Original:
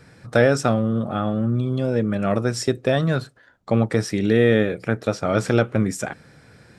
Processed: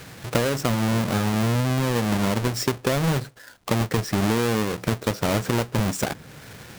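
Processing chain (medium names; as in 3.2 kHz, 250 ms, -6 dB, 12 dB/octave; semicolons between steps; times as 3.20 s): square wave that keeps the level; compression 10:1, threshold -19 dBFS, peak gain reduction 12.5 dB; tape noise reduction on one side only encoder only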